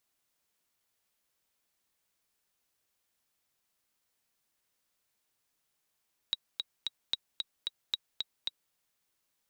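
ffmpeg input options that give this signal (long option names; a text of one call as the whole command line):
ffmpeg -f lavfi -i "aevalsrc='pow(10,(-16-4*gte(mod(t,3*60/224),60/224))/20)*sin(2*PI*3830*mod(t,60/224))*exp(-6.91*mod(t,60/224)/0.03)':duration=2.41:sample_rate=44100" out.wav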